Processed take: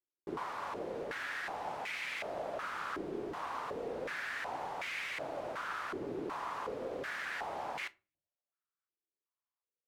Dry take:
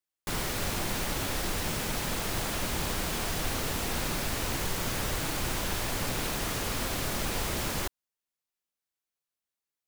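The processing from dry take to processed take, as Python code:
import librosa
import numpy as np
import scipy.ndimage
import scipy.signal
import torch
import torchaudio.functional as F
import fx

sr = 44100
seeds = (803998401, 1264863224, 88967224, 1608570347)

y = fx.room_shoebox(x, sr, seeds[0], volume_m3=130.0, walls='furnished', distance_m=0.3)
y = fx.filter_held_bandpass(y, sr, hz=2.7, low_hz=370.0, high_hz=2200.0)
y = y * 10.0 ** (4.5 / 20.0)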